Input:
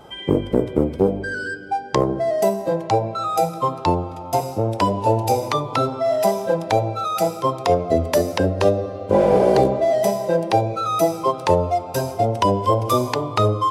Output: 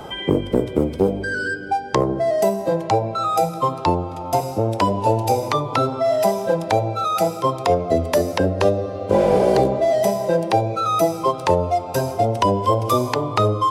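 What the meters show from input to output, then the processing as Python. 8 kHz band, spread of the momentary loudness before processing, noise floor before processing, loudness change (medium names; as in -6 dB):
0.0 dB, 5 LU, -33 dBFS, +0.5 dB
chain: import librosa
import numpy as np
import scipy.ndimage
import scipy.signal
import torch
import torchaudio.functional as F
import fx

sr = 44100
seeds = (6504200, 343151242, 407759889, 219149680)

y = fx.band_squash(x, sr, depth_pct=40)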